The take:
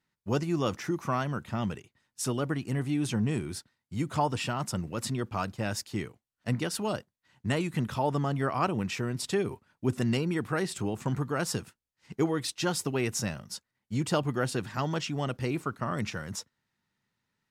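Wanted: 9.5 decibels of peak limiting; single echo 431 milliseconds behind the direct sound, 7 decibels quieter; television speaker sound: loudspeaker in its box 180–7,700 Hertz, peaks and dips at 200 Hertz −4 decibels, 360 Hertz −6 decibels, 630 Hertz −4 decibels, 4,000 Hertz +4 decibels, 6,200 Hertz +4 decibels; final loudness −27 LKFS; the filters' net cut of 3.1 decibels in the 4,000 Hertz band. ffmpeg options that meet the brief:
ffmpeg -i in.wav -af "equalizer=frequency=4000:width_type=o:gain=-7,alimiter=limit=-24dB:level=0:latency=1,highpass=frequency=180:width=0.5412,highpass=frequency=180:width=1.3066,equalizer=frequency=200:width_type=q:width=4:gain=-4,equalizer=frequency=360:width_type=q:width=4:gain=-6,equalizer=frequency=630:width_type=q:width=4:gain=-4,equalizer=frequency=4000:width_type=q:width=4:gain=4,equalizer=frequency=6200:width_type=q:width=4:gain=4,lowpass=frequency=7700:width=0.5412,lowpass=frequency=7700:width=1.3066,aecho=1:1:431:0.447,volume=10.5dB" out.wav

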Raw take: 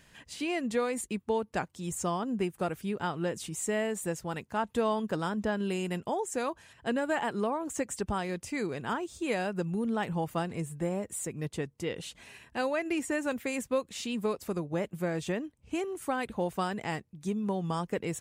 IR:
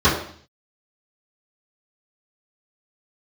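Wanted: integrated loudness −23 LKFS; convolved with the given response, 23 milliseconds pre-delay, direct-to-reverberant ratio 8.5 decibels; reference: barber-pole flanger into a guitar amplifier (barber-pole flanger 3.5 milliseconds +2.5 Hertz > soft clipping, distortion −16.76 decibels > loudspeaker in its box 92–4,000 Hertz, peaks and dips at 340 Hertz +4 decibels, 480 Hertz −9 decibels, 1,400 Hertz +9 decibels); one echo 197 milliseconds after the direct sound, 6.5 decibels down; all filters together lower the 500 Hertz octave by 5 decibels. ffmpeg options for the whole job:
-filter_complex "[0:a]equalizer=frequency=500:width_type=o:gain=-3.5,aecho=1:1:197:0.473,asplit=2[link_01][link_02];[1:a]atrim=start_sample=2205,adelay=23[link_03];[link_02][link_03]afir=irnorm=-1:irlink=0,volume=-31dB[link_04];[link_01][link_04]amix=inputs=2:normalize=0,asplit=2[link_05][link_06];[link_06]adelay=3.5,afreqshift=2.5[link_07];[link_05][link_07]amix=inputs=2:normalize=1,asoftclip=threshold=-26.5dB,highpass=92,equalizer=frequency=340:width_type=q:width=4:gain=4,equalizer=frequency=480:width_type=q:width=4:gain=-9,equalizer=frequency=1400:width_type=q:width=4:gain=9,lowpass=frequency=4000:width=0.5412,lowpass=frequency=4000:width=1.3066,volume=13dB"

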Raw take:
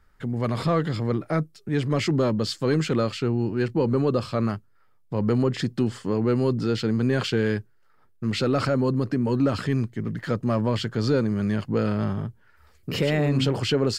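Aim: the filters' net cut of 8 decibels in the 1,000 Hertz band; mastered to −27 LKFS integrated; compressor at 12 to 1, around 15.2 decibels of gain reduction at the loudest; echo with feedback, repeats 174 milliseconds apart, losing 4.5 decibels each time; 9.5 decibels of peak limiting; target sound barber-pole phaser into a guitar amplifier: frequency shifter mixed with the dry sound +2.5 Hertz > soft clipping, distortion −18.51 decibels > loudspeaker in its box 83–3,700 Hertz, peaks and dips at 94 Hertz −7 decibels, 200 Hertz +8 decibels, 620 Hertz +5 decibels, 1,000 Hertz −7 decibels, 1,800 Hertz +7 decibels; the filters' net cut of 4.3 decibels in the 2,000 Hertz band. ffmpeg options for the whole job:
ffmpeg -i in.wav -filter_complex "[0:a]equalizer=frequency=1000:width_type=o:gain=-8,equalizer=frequency=2000:width_type=o:gain=-7,acompressor=threshold=-34dB:ratio=12,alimiter=level_in=9.5dB:limit=-24dB:level=0:latency=1,volume=-9.5dB,aecho=1:1:174|348|522|696|870|1044|1218|1392|1566:0.596|0.357|0.214|0.129|0.0772|0.0463|0.0278|0.0167|0.01,asplit=2[link_01][link_02];[link_02]afreqshift=2.5[link_03];[link_01][link_03]amix=inputs=2:normalize=1,asoftclip=threshold=-36dB,highpass=83,equalizer=frequency=94:width_type=q:width=4:gain=-7,equalizer=frequency=200:width_type=q:width=4:gain=8,equalizer=frequency=620:width_type=q:width=4:gain=5,equalizer=frequency=1000:width_type=q:width=4:gain=-7,equalizer=frequency=1800:width_type=q:width=4:gain=7,lowpass=frequency=3700:width=0.5412,lowpass=frequency=3700:width=1.3066,volume=16.5dB" out.wav

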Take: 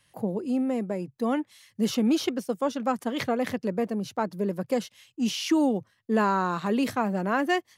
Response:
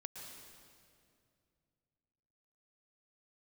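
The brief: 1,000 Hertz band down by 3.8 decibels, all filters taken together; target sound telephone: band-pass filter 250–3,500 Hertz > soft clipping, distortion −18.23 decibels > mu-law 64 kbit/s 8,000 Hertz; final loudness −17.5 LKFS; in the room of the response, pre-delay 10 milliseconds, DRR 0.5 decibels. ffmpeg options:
-filter_complex "[0:a]equalizer=frequency=1000:width_type=o:gain=-5,asplit=2[link_01][link_02];[1:a]atrim=start_sample=2205,adelay=10[link_03];[link_02][link_03]afir=irnorm=-1:irlink=0,volume=3dB[link_04];[link_01][link_04]amix=inputs=2:normalize=0,highpass=250,lowpass=3500,asoftclip=threshold=-17dB,volume=11dB" -ar 8000 -c:a pcm_mulaw

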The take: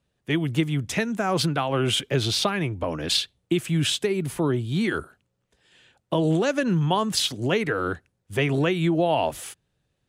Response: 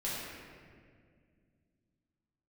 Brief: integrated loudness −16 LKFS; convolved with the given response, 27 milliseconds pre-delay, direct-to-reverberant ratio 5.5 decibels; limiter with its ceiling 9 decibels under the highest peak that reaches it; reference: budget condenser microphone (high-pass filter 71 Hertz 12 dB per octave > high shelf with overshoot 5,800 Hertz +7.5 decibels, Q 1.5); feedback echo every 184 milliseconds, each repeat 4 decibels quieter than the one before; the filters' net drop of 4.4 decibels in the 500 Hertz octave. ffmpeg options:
-filter_complex "[0:a]equalizer=frequency=500:width_type=o:gain=-6,alimiter=limit=-18.5dB:level=0:latency=1,aecho=1:1:184|368|552|736|920|1104|1288|1472|1656:0.631|0.398|0.25|0.158|0.0994|0.0626|0.0394|0.0249|0.0157,asplit=2[link_01][link_02];[1:a]atrim=start_sample=2205,adelay=27[link_03];[link_02][link_03]afir=irnorm=-1:irlink=0,volume=-10dB[link_04];[link_01][link_04]amix=inputs=2:normalize=0,highpass=71,highshelf=frequency=5800:width_type=q:width=1.5:gain=7.5,volume=8.5dB"

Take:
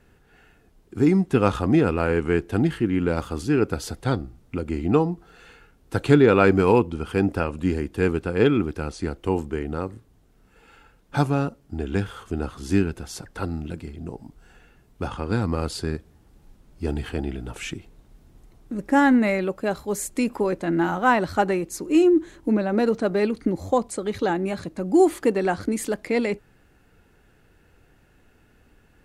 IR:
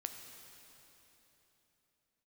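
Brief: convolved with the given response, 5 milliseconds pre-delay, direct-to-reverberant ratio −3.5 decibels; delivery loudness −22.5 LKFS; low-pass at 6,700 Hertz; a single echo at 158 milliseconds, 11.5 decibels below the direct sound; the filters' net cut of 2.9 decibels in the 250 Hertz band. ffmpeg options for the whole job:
-filter_complex "[0:a]lowpass=6700,equalizer=frequency=250:width_type=o:gain=-4,aecho=1:1:158:0.266,asplit=2[link_01][link_02];[1:a]atrim=start_sample=2205,adelay=5[link_03];[link_02][link_03]afir=irnorm=-1:irlink=0,volume=5dB[link_04];[link_01][link_04]amix=inputs=2:normalize=0,volume=-3dB"

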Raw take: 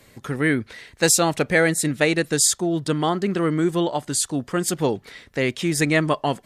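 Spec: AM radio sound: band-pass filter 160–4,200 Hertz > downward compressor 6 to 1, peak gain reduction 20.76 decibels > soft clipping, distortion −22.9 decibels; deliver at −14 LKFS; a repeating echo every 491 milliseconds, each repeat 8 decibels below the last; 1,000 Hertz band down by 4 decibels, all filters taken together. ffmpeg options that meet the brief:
ffmpeg -i in.wav -af "highpass=160,lowpass=4200,equalizer=frequency=1000:width_type=o:gain=-5.5,aecho=1:1:491|982|1473|1964|2455:0.398|0.159|0.0637|0.0255|0.0102,acompressor=threshold=-37dB:ratio=6,asoftclip=threshold=-27dB,volume=26dB" out.wav

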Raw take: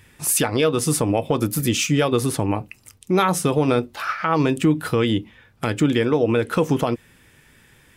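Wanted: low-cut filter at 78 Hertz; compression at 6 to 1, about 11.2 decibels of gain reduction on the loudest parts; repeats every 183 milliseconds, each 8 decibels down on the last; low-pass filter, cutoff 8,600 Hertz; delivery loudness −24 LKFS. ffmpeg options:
ffmpeg -i in.wav -af "highpass=78,lowpass=8600,acompressor=threshold=-26dB:ratio=6,aecho=1:1:183|366|549|732|915:0.398|0.159|0.0637|0.0255|0.0102,volume=6dB" out.wav

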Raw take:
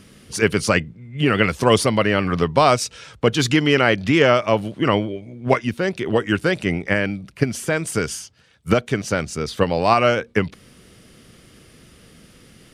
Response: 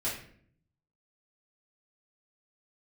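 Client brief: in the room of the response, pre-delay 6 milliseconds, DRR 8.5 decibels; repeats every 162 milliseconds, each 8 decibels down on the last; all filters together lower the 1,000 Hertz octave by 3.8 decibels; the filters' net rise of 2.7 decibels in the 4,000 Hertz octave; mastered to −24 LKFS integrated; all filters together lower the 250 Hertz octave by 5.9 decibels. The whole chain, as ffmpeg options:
-filter_complex "[0:a]equalizer=frequency=250:width_type=o:gain=-8,equalizer=frequency=1000:width_type=o:gain=-5,equalizer=frequency=4000:width_type=o:gain=4.5,aecho=1:1:162|324|486|648|810:0.398|0.159|0.0637|0.0255|0.0102,asplit=2[link_01][link_02];[1:a]atrim=start_sample=2205,adelay=6[link_03];[link_02][link_03]afir=irnorm=-1:irlink=0,volume=-14dB[link_04];[link_01][link_04]amix=inputs=2:normalize=0,volume=-3.5dB"

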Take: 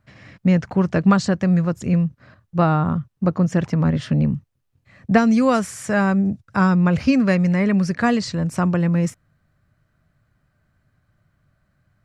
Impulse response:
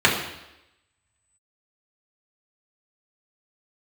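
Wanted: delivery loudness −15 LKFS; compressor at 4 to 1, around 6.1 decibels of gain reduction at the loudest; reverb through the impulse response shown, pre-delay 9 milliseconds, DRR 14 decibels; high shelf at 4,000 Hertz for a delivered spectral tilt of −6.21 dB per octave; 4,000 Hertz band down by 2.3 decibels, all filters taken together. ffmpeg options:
-filter_complex "[0:a]highshelf=frequency=4000:gain=6.5,equalizer=frequency=4000:width_type=o:gain=-7.5,acompressor=threshold=-17dB:ratio=4,asplit=2[link_01][link_02];[1:a]atrim=start_sample=2205,adelay=9[link_03];[link_02][link_03]afir=irnorm=-1:irlink=0,volume=-35.5dB[link_04];[link_01][link_04]amix=inputs=2:normalize=0,volume=7.5dB"

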